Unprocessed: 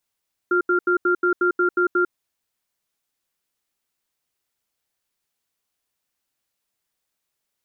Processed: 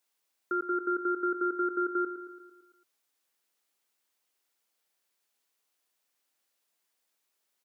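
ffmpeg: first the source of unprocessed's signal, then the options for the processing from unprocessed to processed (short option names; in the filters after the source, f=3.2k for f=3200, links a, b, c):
-f lavfi -i "aevalsrc='0.119*(sin(2*PI*357*t)+sin(2*PI*1390*t))*clip(min(mod(t,0.18),0.1-mod(t,0.18))/0.005,0,1)':d=1.56:s=44100"
-filter_complex "[0:a]highpass=270,alimiter=limit=-23dB:level=0:latency=1:release=333,asplit=2[a][b];[b]aecho=0:1:112|224|336|448|560|672|784:0.282|0.166|0.0981|0.0579|0.0342|0.0201|0.0119[c];[a][c]amix=inputs=2:normalize=0"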